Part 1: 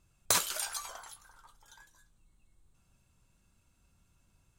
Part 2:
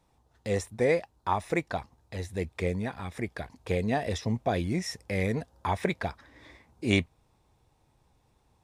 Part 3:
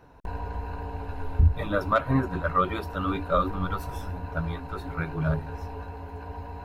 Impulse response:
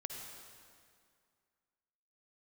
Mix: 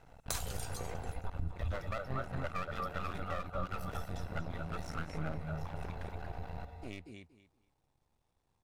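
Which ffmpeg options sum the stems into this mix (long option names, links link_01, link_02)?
-filter_complex "[0:a]volume=-6dB[link_01];[1:a]acompressor=threshold=-31dB:ratio=6,volume=-8.5dB,asplit=2[link_02][link_03];[link_03]volume=-9dB[link_04];[2:a]aecho=1:1:1.5:0.92,volume=-3.5dB,asplit=2[link_05][link_06];[link_06]volume=-11dB[link_07];[link_02][link_05]amix=inputs=2:normalize=0,aeval=exprs='max(val(0),0)':channel_layout=same,alimiter=limit=-17.5dB:level=0:latency=1:release=263,volume=0dB[link_08];[link_04][link_07]amix=inputs=2:normalize=0,aecho=0:1:235|470|705:1|0.19|0.0361[link_09];[link_01][link_08][link_09]amix=inputs=3:normalize=0,acompressor=threshold=-36dB:ratio=2.5"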